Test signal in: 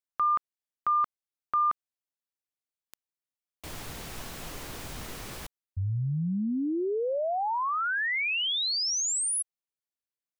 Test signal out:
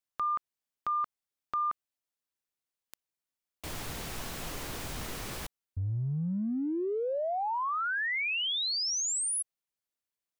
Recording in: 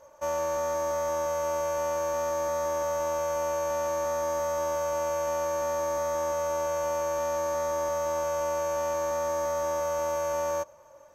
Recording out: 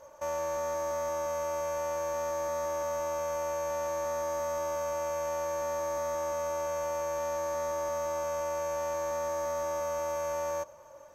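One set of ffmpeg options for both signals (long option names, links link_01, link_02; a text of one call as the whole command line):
ffmpeg -i in.wav -af "acompressor=threshold=-33dB:ratio=2.5:attack=0.67:release=28:knee=1:detection=peak,volume=1.5dB" out.wav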